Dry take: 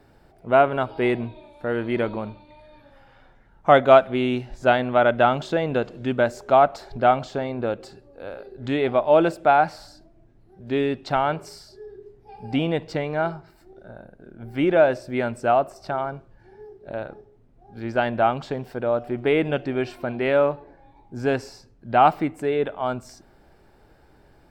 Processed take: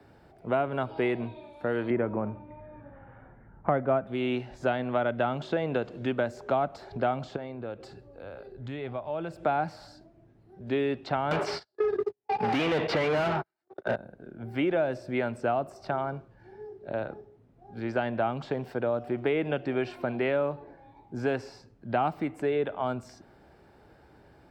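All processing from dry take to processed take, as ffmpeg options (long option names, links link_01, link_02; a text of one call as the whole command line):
ffmpeg -i in.wav -filter_complex "[0:a]asettb=1/sr,asplit=3[link_01][link_02][link_03];[link_01]atrim=end=1.904[link_04];[link_02]atrim=start=1.9:end=4.07,asetpts=PTS-STARTPTS,afade=type=in:duration=0.004:curve=qsin,afade=type=out:start_time=2.166:duration=0.004:curve=qsin,lowpass=frequency=2000:width=0.5412,lowpass=frequency=2000:width=1.3066,lowshelf=frequency=320:gain=9.5[link_05];[link_03]atrim=start=4.066[link_06];[link_04][link_05]acrossfade=duration=0.004:curve1=hsin:curve2=qsin[link_07];[link_07][link_06]acrossfade=duration=0.004:curve1=qsin:curve2=hsin,asettb=1/sr,asplit=3[link_08][link_09][link_10];[link_08]atrim=end=7.364[link_11];[link_09]atrim=start=7.36:end=9.43,asetpts=PTS-STARTPTS,afade=type=in:duration=0.004:curve=qsin,afade=type=out:start_time=2.066:duration=0.004:curve=qsin,asubboost=boost=7:cutoff=140,acompressor=threshold=-42dB:ratio=2:attack=3.2:release=140:knee=1:detection=peak[link_12];[link_10]atrim=start=9.426[link_13];[link_11][link_12]acrossfade=duration=0.004:curve1=hsin:curve2=qsin[link_14];[link_14][link_13]acrossfade=duration=0.004:curve1=qsin:curve2=hsin,asettb=1/sr,asplit=3[link_15][link_16][link_17];[link_15]atrim=end=11.314[link_18];[link_16]atrim=start=11.31:end=13.96,asetpts=PTS-STARTPTS,afade=type=in:duration=0.004:curve=qsin,afade=type=out:start_time=2.646:duration=0.004:curve=qsin,agate=range=-55dB:threshold=-43dB:ratio=16:release=100:detection=peak,asplit=2[link_19][link_20];[link_20]highpass=frequency=720:poles=1,volume=36dB,asoftclip=type=tanh:threshold=-11dB[link_21];[link_19][link_21]amix=inputs=2:normalize=0,lowpass=frequency=3900:poles=1,volume=-6dB[link_22];[link_17]atrim=start=13.956[link_23];[link_18][link_22]acrossfade=duration=0.004:curve1=hsin:curve2=qsin[link_24];[link_24][link_23]acrossfade=duration=0.004:curve1=qsin:curve2=hsin,highpass=63,highshelf=frequency=5600:gain=-7.5,acrossover=split=100|320|4400[link_25][link_26][link_27][link_28];[link_25]acompressor=threshold=-49dB:ratio=4[link_29];[link_26]acompressor=threshold=-35dB:ratio=4[link_30];[link_27]acompressor=threshold=-27dB:ratio=4[link_31];[link_28]acompressor=threshold=-58dB:ratio=4[link_32];[link_29][link_30][link_31][link_32]amix=inputs=4:normalize=0" out.wav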